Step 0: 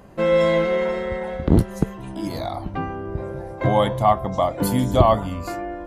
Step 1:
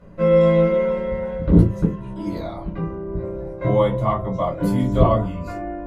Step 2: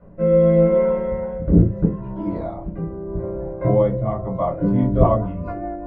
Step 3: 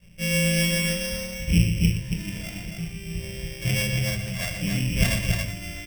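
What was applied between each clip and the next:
low-pass 2.6 kHz 6 dB/octave; reverberation, pre-delay 3 ms, DRR -5 dB; trim -12.5 dB
low-pass 1.5 kHz 12 dB/octave; peaking EQ 740 Hz +4 dB 0.49 oct; rotary cabinet horn 0.8 Hz, later 5 Hz, at 4.19 s; trim +2 dB
sorted samples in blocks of 16 samples; high-order bell 580 Hz -12.5 dB 2.8 oct; loudspeakers at several distances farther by 41 m -8 dB, 96 m -4 dB; trim -4.5 dB

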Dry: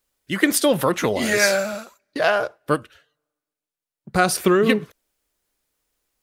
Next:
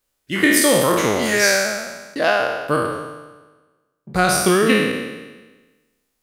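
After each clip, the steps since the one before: spectral sustain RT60 1.26 s; trim -1 dB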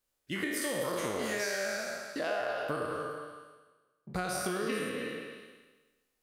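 compression 6:1, threshold -23 dBFS, peak gain reduction 12 dB; on a send: repeats whose band climbs or falls 106 ms, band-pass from 530 Hz, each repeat 1.4 oct, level -0.5 dB; on the sum: trim -9 dB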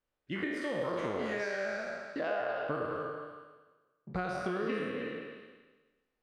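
Bessel low-pass 2.2 kHz, order 2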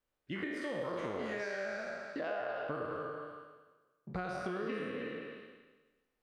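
compression 1.5:1, threshold -41 dBFS, peak gain reduction 4.5 dB

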